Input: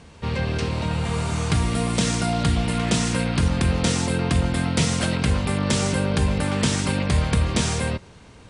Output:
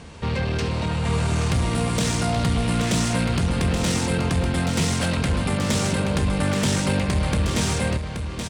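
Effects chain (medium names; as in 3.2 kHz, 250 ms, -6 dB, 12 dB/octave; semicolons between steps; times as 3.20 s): in parallel at -2 dB: compression, threshold -31 dBFS, peak gain reduction 14.5 dB; on the sum: saturation -17 dBFS, distortion -13 dB; delay 827 ms -7 dB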